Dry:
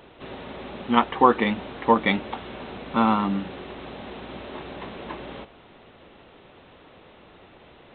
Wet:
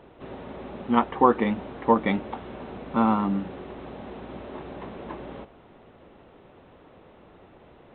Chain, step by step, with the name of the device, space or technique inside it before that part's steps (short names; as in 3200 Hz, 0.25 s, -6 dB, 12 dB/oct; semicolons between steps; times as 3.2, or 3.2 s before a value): through cloth (high shelf 2200 Hz -14.5 dB)